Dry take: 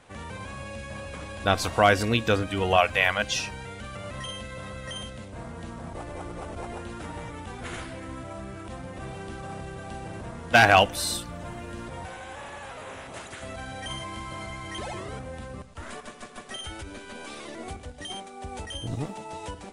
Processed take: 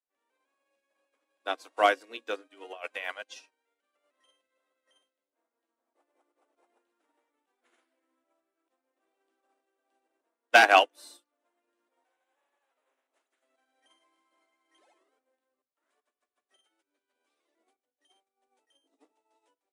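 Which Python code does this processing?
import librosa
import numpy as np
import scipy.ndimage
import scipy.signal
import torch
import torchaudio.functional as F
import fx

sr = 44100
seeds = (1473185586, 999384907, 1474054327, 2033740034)

y = fx.over_compress(x, sr, threshold_db=-24.0, ratio=-1.0, at=(2.72, 3.16))
y = scipy.signal.sosfilt(scipy.signal.butter(12, 260.0, 'highpass', fs=sr, output='sos'), y)
y = fx.hum_notches(y, sr, base_hz=60, count=8)
y = fx.upward_expand(y, sr, threshold_db=-45.0, expansion=2.5)
y = F.gain(torch.from_numpy(y), 1.5).numpy()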